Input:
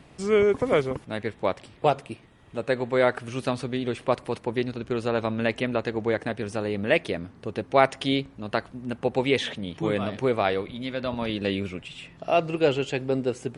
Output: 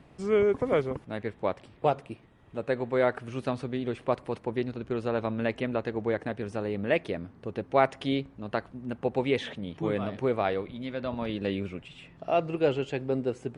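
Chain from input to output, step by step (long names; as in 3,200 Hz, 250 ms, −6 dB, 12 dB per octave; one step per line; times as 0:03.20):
high-shelf EQ 2,900 Hz −9.5 dB
level −3 dB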